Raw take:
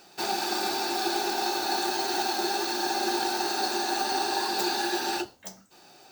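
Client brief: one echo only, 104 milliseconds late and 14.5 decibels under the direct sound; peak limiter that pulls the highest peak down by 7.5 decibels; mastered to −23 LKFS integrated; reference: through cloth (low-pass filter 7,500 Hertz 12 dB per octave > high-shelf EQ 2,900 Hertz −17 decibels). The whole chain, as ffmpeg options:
ffmpeg -i in.wav -af "alimiter=limit=-22dB:level=0:latency=1,lowpass=7500,highshelf=frequency=2900:gain=-17,aecho=1:1:104:0.188,volume=11.5dB" out.wav

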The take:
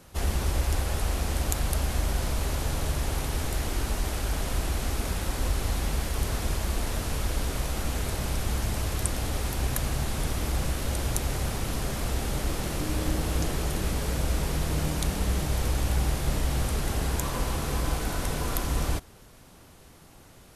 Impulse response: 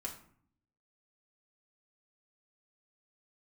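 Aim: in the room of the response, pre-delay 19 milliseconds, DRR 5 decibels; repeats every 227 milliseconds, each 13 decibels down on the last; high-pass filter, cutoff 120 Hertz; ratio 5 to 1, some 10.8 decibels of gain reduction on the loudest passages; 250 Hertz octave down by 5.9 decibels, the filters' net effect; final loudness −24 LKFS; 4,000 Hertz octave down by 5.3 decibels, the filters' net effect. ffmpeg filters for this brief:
-filter_complex "[0:a]highpass=120,equalizer=frequency=250:width_type=o:gain=-8,equalizer=frequency=4000:width_type=o:gain=-7,acompressor=threshold=-39dB:ratio=5,aecho=1:1:227|454|681:0.224|0.0493|0.0108,asplit=2[link_01][link_02];[1:a]atrim=start_sample=2205,adelay=19[link_03];[link_02][link_03]afir=irnorm=-1:irlink=0,volume=-4dB[link_04];[link_01][link_04]amix=inputs=2:normalize=0,volume=16dB"

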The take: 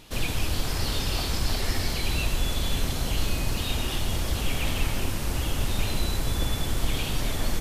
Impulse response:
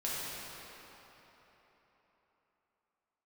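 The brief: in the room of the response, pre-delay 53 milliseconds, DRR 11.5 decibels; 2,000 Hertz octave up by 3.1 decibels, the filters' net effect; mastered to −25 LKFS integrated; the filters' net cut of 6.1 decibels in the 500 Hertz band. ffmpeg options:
-filter_complex "[0:a]equalizer=frequency=500:width_type=o:gain=-8.5,equalizer=frequency=2000:width_type=o:gain=4.5,asplit=2[link_01][link_02];[1:a]atrim=start_sample=2205,adelay=53[link_03];[link_02][link_03]afir=irnorm=-1:irlink=0,volume=-17dB[link_04];[link_01][link_04]amix=inputs=2:normalize=0,volume=3dB"

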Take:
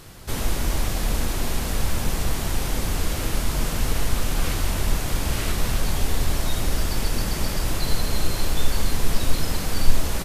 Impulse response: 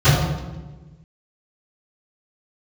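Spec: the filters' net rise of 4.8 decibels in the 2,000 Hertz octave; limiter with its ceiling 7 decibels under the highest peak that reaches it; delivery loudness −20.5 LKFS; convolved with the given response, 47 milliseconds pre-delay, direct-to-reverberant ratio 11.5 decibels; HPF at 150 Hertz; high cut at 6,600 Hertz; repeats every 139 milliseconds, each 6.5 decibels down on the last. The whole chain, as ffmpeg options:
-filter_complex "[0:a]highpass=150,lowpass=6600,equalizer=frequency=2000:width_type=o:gain=6,alimiter=limit=-22.5dB:level=0:latency=1,aecho=1:1:139|278|417|556|695|834:0.473|0.222|0.105|0.0491|0.0231|0.0109,asplit=2[link_01][link_02];[1:a]atrim=start_sample=2205,adelay=47[link_03];[link_02][link_03]afir=irnorm=-1:irlink=0,volume=-36dB[link_04];[link_01][link_04]amix=inputs=2:normalize=0,volume=8dB"

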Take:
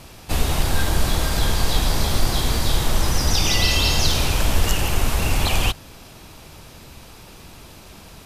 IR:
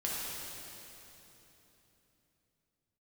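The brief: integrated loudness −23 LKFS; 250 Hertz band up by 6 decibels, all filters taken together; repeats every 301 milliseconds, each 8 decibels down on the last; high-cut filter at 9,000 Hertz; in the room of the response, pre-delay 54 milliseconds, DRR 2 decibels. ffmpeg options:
-filter_complex "[0:a]lowpass=9000,equalizer=frequency=250:width_type=o:gain=8,aecho=1:1:301|602|903|1204|1505:0.398|0.159|0.0637|0.0255|0.0102,asplit=2[link_01][link_02];[1:a]atrim=start_sample=2205,adelay=54[link_03];[link_02][link_03]afir=irnorm=-1:irlink=0,volume=-7dB[link_04];[link_01][link_04]amix=inputs=2:normalize=0,volume=-5dB"

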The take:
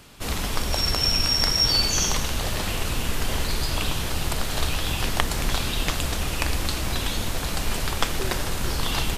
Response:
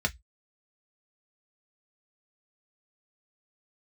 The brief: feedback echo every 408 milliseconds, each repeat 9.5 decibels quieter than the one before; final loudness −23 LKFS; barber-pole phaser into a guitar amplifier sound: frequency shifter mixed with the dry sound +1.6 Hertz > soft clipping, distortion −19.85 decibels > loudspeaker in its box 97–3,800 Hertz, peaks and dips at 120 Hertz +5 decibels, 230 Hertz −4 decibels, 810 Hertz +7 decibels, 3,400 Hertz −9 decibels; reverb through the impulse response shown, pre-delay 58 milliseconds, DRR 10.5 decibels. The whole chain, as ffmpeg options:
-filter_complex "[0:a]aecho=1:1:408|816|1224|1632:0.335|0.111|0.0365|0.012,asplit=2[link_01][link_02];[1:a]atrim=start_sample=2205,adelay=58[link_03];[link_02][link_03]afir=irnorm=-1:irlink=0,volume=-18.5dB[link_04];[link_01][link_04]amix=inputs=2:normalize=0,asplit=2[link_05][link_06];[link_06]afreqshift=1.6[link_07];[link_05][link_07]amix=inputs=2:normalize=1,asoftclip=threshold=-16dB,highpass=97,equalizer=frequency=120:width_type=q:width=4:gain=5,equalizer=frequency=230:width_type=q:width=4:gain=-4,equalizer=frequency=810:width_type=q:width=4:gain=7,equalizer=frequency=3400:width_type=q:width=4:gain=-9,lowpass=frequency=3800:width=0.5412,lowpass=frequency=3800:width=1.3066,volume=9dB"

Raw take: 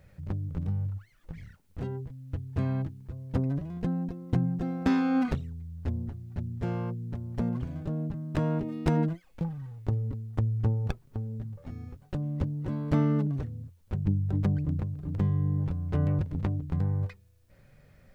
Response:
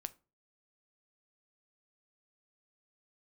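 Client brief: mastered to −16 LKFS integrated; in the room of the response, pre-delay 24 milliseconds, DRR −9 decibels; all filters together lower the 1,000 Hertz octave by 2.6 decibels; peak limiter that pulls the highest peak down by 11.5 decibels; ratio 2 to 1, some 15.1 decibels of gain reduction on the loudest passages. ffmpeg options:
-filter_complex "[0:a]equalizer=frequency=1000:width_type=o:gain=-3.5,acompressor=threshold=-50dB:ratio=2,alimiter=level_in=13.5dB:limit=-24dB:level=0:latency=1,volume=-13.5dB,asplit=2[link_01][link_02];[1:a]atrim=start_sample=2205,adelay=24[link_03];[link_02][link_03]afir=irnorm=-1:irlink=0,volume=12dB[link_04];[link_01][link_04]amix=inputs=2:normalize=0,volume=21dB"

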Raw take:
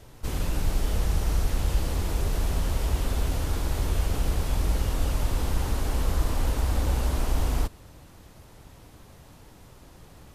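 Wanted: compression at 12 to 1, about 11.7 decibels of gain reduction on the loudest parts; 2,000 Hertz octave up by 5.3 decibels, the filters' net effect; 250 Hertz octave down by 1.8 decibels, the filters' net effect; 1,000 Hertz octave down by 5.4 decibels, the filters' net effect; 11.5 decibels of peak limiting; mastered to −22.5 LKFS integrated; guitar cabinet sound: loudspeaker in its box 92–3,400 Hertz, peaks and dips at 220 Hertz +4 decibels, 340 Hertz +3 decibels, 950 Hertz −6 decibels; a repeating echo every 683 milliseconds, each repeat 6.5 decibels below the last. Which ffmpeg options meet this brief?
ffmpeg -i in.wav -af "equalizer=frequency=250:width_type=o:gain=-5,equalizer=frequency=1000:width_type=o:gain=-6.5,equalizer=frequency=2000:width_type=o:gain=9,acompressor=threshold=-31dB:ratio=12,alimiter=level_in=11dB:limit=-24dB:level=0:latency=1,volume=-11dB,highpass=92,equalizer=frequency=220:width_type=q:width=4:gain=4,equalizer=frequency=340:width_type=q:width=4:gain=3,equalizer=frequency=950:width_type=q:width=4:gain=-6,lowpass=frequency=3400:width=0.5412,lowpass=frequency=3400:width=1.3066,aecho=1:1:683|1366|2049|2732|3415|4098:0.473|0.222|0.105|0.0491|0.0231|0.0109,volume=27dB" out.wav

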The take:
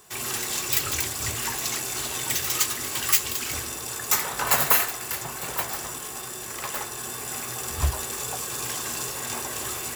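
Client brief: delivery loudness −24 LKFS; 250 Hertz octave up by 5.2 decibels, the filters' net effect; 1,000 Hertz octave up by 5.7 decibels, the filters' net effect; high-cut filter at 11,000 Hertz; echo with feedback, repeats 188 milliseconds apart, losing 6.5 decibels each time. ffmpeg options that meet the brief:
ffmpeg -i in.wav -af "lowpass=11000,equalizer=frequency=250:width_type=o:gain=6.5,equalizer=frequency=1000:width_type=o:gain=6.5,aecho=1:1:188|376|564|752|940|1128:0.473|0.222|0.105|0.0491|0.0231|0.0109,volume=1.5dB" out.wav

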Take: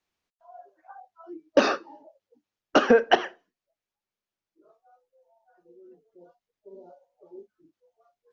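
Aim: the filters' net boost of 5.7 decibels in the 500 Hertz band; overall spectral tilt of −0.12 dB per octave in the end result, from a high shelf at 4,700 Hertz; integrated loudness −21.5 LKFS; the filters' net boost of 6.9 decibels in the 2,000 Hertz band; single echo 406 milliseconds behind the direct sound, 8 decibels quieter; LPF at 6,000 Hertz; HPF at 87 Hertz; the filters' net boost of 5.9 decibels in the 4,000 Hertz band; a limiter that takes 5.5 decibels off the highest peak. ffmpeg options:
ffmpeg -i in.wav -af "highpass=87,lowpass=6000,equalizer=frequency=500:width_type=o:gain=6,equalizer=frequency=2000:width_type=o:gain=8.5,equalizer=frequency=4000:width_type=o:gain=6.5,highshelf=frequency=4700:gain=-4.5,alimiter=limit=-5.5dB:level=0:latency=1,aecho=1:1:406:0.398" out.wav

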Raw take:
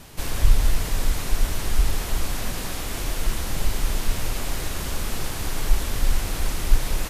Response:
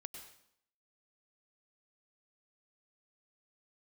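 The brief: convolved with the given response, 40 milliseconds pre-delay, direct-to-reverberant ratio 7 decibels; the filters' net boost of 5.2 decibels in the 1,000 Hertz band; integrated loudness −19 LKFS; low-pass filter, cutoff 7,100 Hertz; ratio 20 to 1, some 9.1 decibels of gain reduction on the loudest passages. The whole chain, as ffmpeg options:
-filter_complex "[0:a]lowpass=7100,equalizer=frequency=1000:width_type=o:gain=6.5,acompressor=threshold=-17dB:ratio=20,asplit=2[link_01][link_02];[1:a]atrim=start_sample=2205,adelay=40[link_03];[link_02][link_03]afir=irnorm=-1:irlink=0,volume=-2.5dB[link_04];[link_01][link_04]amix=inputs=2:normalize=0,volume=10dB"

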